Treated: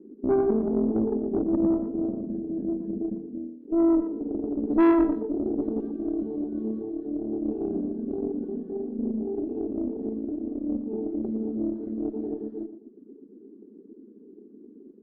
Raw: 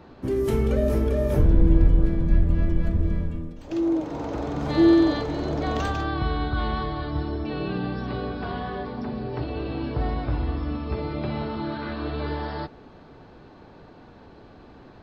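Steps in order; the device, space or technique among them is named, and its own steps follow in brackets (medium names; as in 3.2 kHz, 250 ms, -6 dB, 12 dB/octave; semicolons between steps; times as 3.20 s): elliptic band-pass 210–420 Hz, stop band 40 dB; reverb removal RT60 0.69 s; rockabilly slapback (valve stage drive 23 dB, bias 0.5; tape echo 116 ms, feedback 32%, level -9 dB, low-pass 1.2 kHz); trim +7.5 dB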